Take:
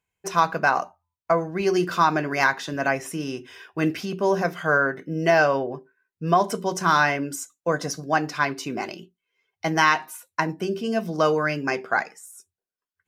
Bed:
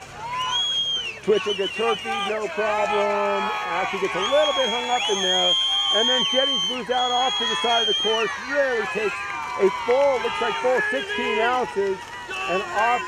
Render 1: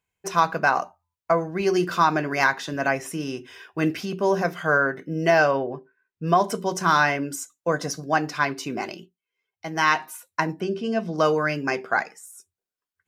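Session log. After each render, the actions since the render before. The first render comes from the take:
0:05.51–0:06.24: low-pass filter 4,000 Hz
0:08.96–0:09.92: duck −8 dB, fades 0.20 s
0:10.60–0:11.18: high-frequency loss of the air 79 metres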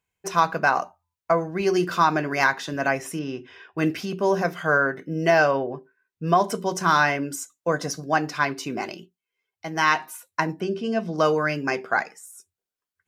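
0:03.19–0:03.78: high-frequency loss of the air 170 metres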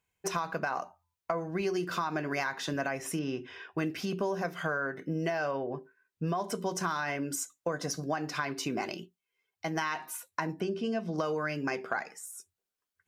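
brickwall limiter −11.5 dBFS, peak gain reduction 6.5 dB
downward compressor, threshold −29 dBFS, peak gain reduction 11.5 dB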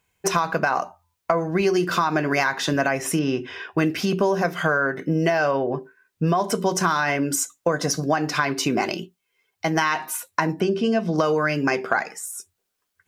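level +11 dB

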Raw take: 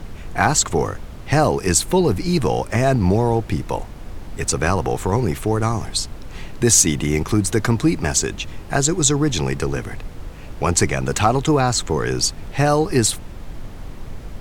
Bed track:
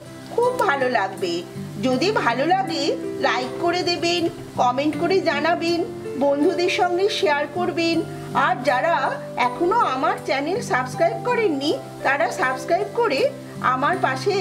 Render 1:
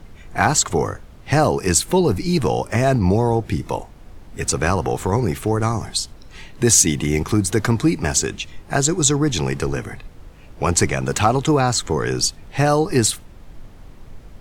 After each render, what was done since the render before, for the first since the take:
noise reduction from a noise print 8 dB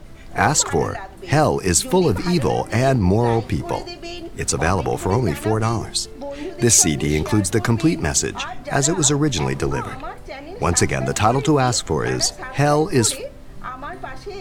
mix in bed track −12 dB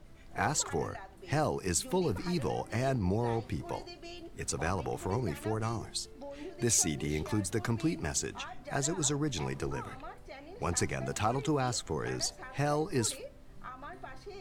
level −14 dB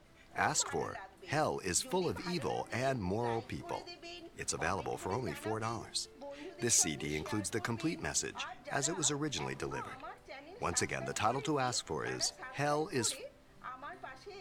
low-pass filter 2,800 Hz 6 dB per octave
spectral tilt +2.5 dB per octave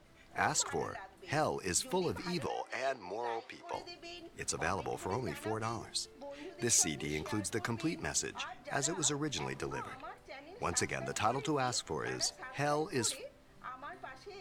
0:02.46–0:03.74: three-way crossover with the lows and the highs turned down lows −23 dB, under 390 Hz, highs −13 dB, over 7,500 Hz

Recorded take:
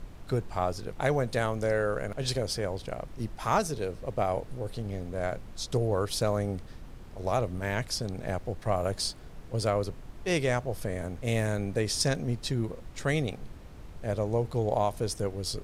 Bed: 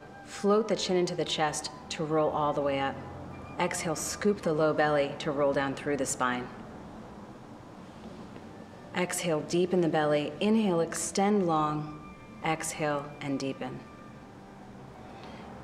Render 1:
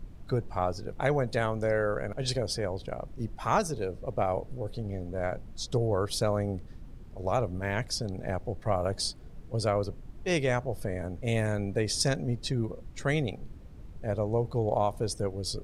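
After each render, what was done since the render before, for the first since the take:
broadband denoise 9 dB, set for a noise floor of −46 dBFS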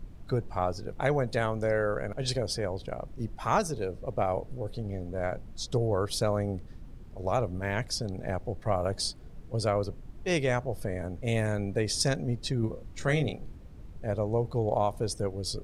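0:12.60–0:13.56: double-tracking delay 27 ms −6 dB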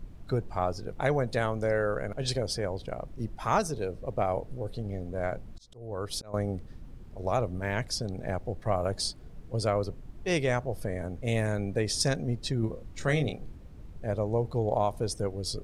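0:05.42–0:06.34: volume swells 527 ms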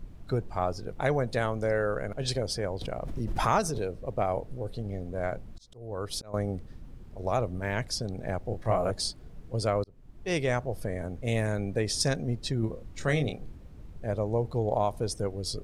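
0:02.81–0:03.87: background raised ahead of every attack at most 28 dB per second
0:08.49–0:08.91: double-tracking delay 27 ms −3 dB
0:09.84–0:10.61: fade in equal-power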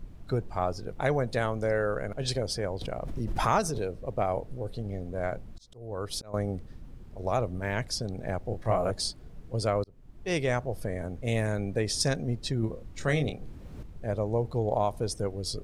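0:13.28–0:13.83: multiband upward and downward compressor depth 70%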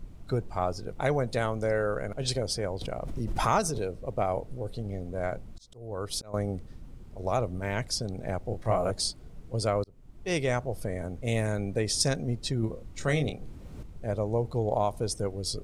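parametric band 8,300 Hz +3.5 dB 1.1 octaves
notch filter 1,700 Hz, Q 17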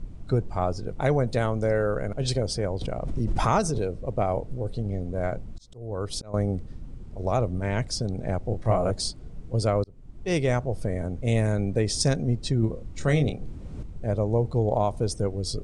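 Butterworth low-pass 9,900 Hz 36 dB per octave
low-shelf EQ 500 Hz +6.5 dB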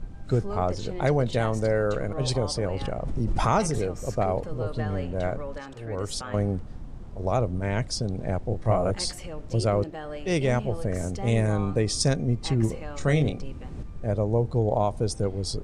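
mix in bed −10.5 dB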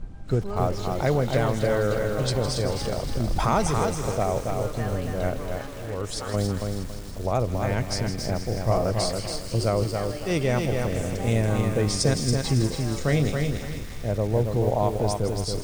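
delay with a high-pass on its return 160 ms, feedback 81%, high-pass 1,900 Hz, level −10 dB
feedback echo at a low word length 278 ms, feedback 35%, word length 7 bits, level −4 dB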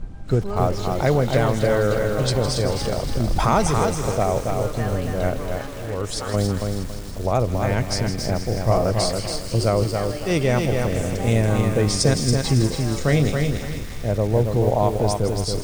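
level +4 dB

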